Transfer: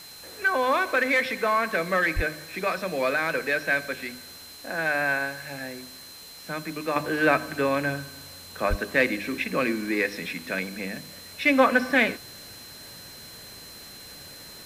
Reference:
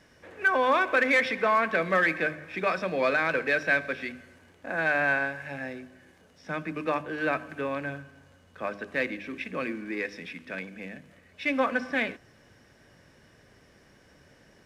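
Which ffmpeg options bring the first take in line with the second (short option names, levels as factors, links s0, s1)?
-filter_complex "[0:a]bandreject=f=4100:w=30,asplit=3[s0][s1][s2];[s0]afade=t=out:st=2.15:d=0.02[s3];[s1]highpass=f=140:w=0.5412,highpass=f=140:w=1.3066,afade=t=in:st=2.15:d=0.02,afade=t=out:st=2.27:d=0.02[s4];[s2]afade=t=in:st=2.27:d=0.02[s5];[s3][s4][s5]amix=inputs=3:normalize=0,asplit=3[s6][s7][s8];[s6]afade=t=out:st=8.69:d=0.02[s9];[s7]highpass=f=140:w=0.5412,highpass=f=140:w=1.3066,afade=t=in:st=8.69:d=0.02,afade=t=out:st=8.81:d=0.02[s10];[s8]afade=t=in:st=8.81:d=0.02[s11];[s9][s10][s11]amix=inputs=3:normalize=0,afwtdn=0.005,asetnsamples=n=441:p=0,asendcmd='6.96 volume volume -7dB',volume=1"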